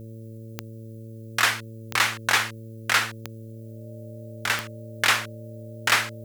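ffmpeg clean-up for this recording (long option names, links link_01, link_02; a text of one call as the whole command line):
ffmpeg -i in.wav -af "adeclick=threshold=4,bandreject=frequency=112.1:width_type=h:width=4,bandreject=frequency=224.2:width_type=h:width=4,bandreject=frequency=336.3:width_type=h:width=4,bandreject=frequency=448.4:width_type=h:width=4,bandreject=frequency=560.5:width_type=h:width=4,bandreject=frequency=600:width=30,agate=range=-21dB:threshold=-32dB" out.wav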